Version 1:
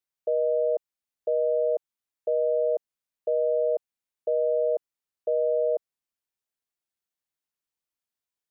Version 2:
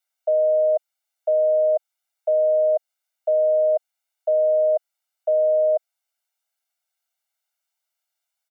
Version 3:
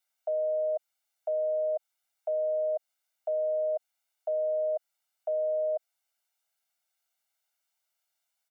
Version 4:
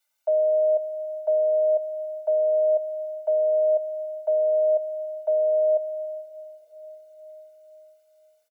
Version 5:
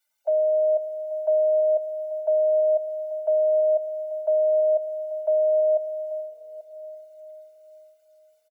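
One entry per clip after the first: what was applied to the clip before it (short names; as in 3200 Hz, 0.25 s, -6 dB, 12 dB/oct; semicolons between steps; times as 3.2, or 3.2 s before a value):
steep high-pass 590 Hz 48 dB/oct; comb 1.4 ms, depth 85%; gain +6 dB
limiter -24.5 dBFS, peak gain reduction 10.5 dB
comb 3.4 ms, depth 93%; digital reverb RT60 4.9 s, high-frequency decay 0.95×, pre-delay 55 ms, DRR 15.5 dB; gain +3 dB
bin magnitudes rounded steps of 15 dB; echo 0.837 s -16 dB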